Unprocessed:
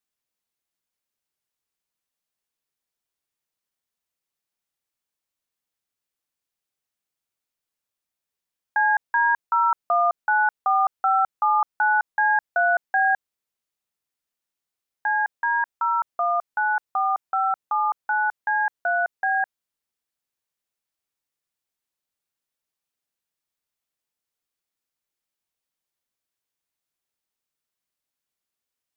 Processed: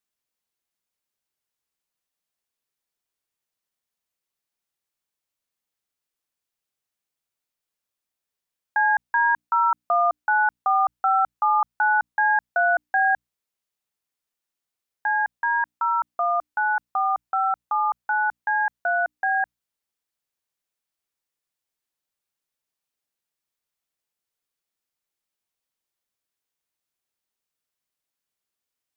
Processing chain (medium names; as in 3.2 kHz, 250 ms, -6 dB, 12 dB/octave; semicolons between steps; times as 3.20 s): hum notches 60/120/180/240/300 Hz